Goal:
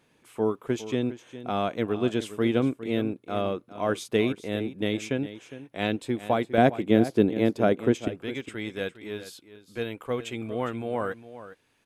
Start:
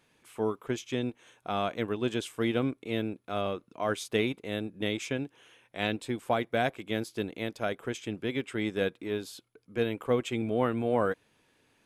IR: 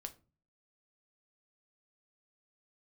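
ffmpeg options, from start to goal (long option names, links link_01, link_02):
-af "asetnsamples=nb_out_samples=441:pad=0,asendcmd='6.58 equalizer g 14;8.08 equalizer g -3.5',equalizer=frequency=260:width=0.35:gain=5,aecho=1:1:408:0.2"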